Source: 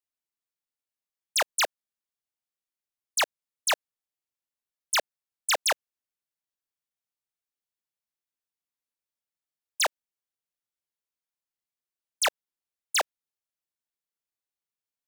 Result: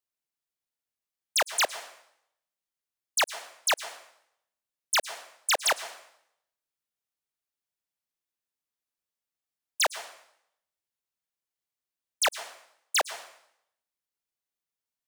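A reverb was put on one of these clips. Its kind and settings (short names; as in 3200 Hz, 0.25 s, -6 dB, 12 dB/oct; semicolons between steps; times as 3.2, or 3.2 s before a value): plate-style reverb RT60 0.73 s, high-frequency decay 0.95×, pre-delay 95 ms, DRR 13.5 dB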